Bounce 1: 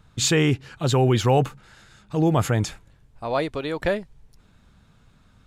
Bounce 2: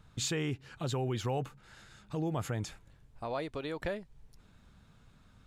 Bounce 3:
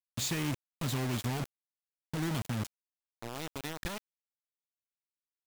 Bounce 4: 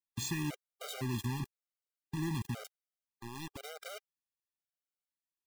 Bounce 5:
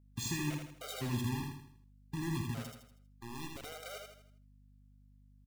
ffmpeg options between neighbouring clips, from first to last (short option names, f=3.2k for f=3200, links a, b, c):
-af "acompressor=threshold=-34dB:ratio=2,volume=-4.5dB"
-af "equalizer=f=250:t=o:w=1:g=7,equalizer=f=500:t=o:w=1:g=-12,equalizer=f=1k:t=o:w=1:g=-8,acrusher=bits=5:mix=0:aa=0.000001"
-af "afftfilt=real='re*gt(sin(2*PI*0.98*pts/sr)*(1-2*mod(floor(b*sr/1024/400),2)),0)':imag='im*gt(sin(2*PI*0.98*pts/sr)*(1-2*mod(floor(b*sr/1024/400),2)),0)':win_size=1024:overlap=0.75,volume=-1.5dB"
-filter_complex "[0:a]asplit=2[a][b];[b]aecho=0:1:80|160|240|320|400:0.596|0.25|0.105|0.0441|0.0185[c];[a][c]amix=inputs=2:normalize=0,aeval=exprs='val(0)+0.001*(sin(2*PI*50*n/s)+sin(2*PI*2*50*n/s)/2+sin(2*PI*3*50*n/s)/3+sin(2*PI*4*50*n/s)/4+sin(2*PI*5*50*n/s)/5)':c=same,asplit=2[d][e];[e]aecho=0:1:59|72:0.211|0.158[f];[d][f]amix=inputs=2:normalize=0,volume=-1.5dB"